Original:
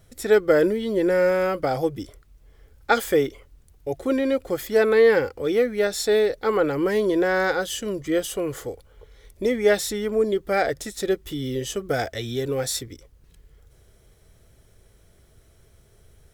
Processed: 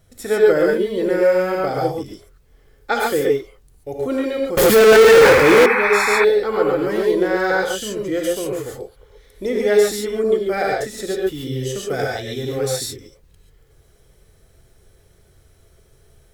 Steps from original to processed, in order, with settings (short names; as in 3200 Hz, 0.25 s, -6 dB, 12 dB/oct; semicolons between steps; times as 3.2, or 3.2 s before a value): non-linear reverb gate 0.16 s rising, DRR -2 dB; 4.57–5.66 power-law curve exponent 0.35; 5.22–6.25 painted sound noise 760–2600 Hz -17 dBFS; gain -1.5 dB